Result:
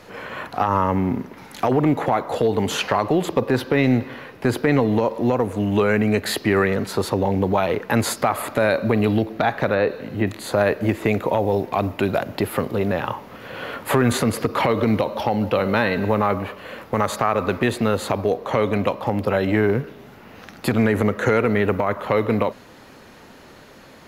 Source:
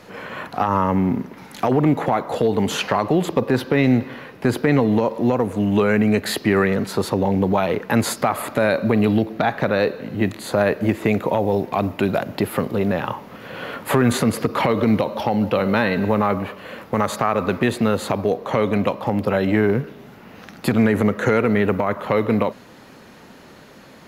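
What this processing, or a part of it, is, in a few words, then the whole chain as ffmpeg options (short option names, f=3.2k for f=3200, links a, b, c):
low shelf boost with a cut just above: -filter_complex "[0:a]asettb=1/sr,asplit=3[a][b][c];[a]atrim=end=9.744[d];[b]atrim=start=9.74:end=10.27,asetpts=PTS-STARTPTS,afade=t=in:d=0.004:c=qsin,afade=t=out:st=0.526:d=0.004:c=qsin,acrossover=split=3000[e][f];[f]acompressor=threshold=-45dB:ratio=4:attack=1:release=60[g];[e][g]amix=inputs=2:normalize=0[h];[c]atrim=start=10.266[i];[d][h]acrossfade=d=0.004:c1=hsin:c2=qsin[j];[j][i]acrossfade=d=0.004:c1=qsin:c2=hsin,lowshelf=f=71:g=5.5,equalizer=f=180:t=o:w=1:g=-4.5"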